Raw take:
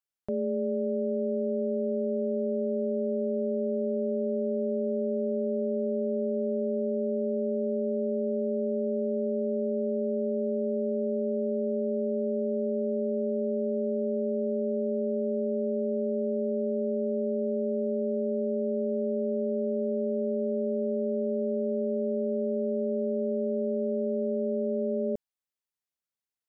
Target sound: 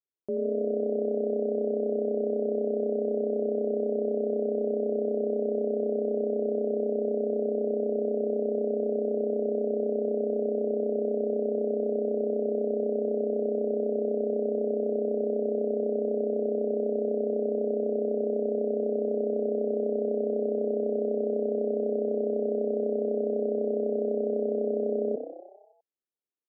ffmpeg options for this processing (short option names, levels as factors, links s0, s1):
-filter_complex "[0:a]bandpass=f=360:t=q:w=2.4:csg=0,asplit=2[s0][s1];[s1]asplit=8[s2][s3][s4][s5][s6][s7][s8][s9];[s2]adelay=81,afreqshift=32,volume=0.355[s10];[s3]adelay=162,afreqshift=64,volume=0.224[s11];[s4]adelay=243,afreqshift=96,volume=0.141[s12];[s5]adelay=324,afreqshift=128,volume=0.0891[s13];[s6]adelay=405,afreqshift=160,volume=0.0556[s14];[s7]adelay=486,afreqshift=192,volume=0.0351[s15];[s8]adelay=567,afreqshift=224,volume=0.0221[s16];[s9]adelay=648,afreqshift=256,volume=0.014[s17];[s10][s11][s12][s13][s14][s15][s16][s17]amix=inputs=8:normalize=0[s18];[s0][s18]amix=inputs=2:normalize=0,volume=1.78"